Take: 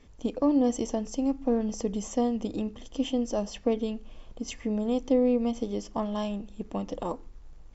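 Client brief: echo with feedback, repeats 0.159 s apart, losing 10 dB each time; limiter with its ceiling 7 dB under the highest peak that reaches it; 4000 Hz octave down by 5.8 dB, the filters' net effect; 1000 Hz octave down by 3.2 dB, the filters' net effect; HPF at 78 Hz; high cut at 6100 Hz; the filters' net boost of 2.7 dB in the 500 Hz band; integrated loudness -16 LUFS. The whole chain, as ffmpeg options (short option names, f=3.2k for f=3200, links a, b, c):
-af "highpass=78,lowpass=6.1k,equalizer=f=500:t=o:g=4.5,equalizer=f=1k:t=o:g=-7,equalizer=f=4k:t=o:g=-7.5,alimiter=limit=-18.5dB:level=0:latency=1,aecho=1:1:159|318|477|636:0.316|0.101|0.0324|0.0104,volume=13.5dB"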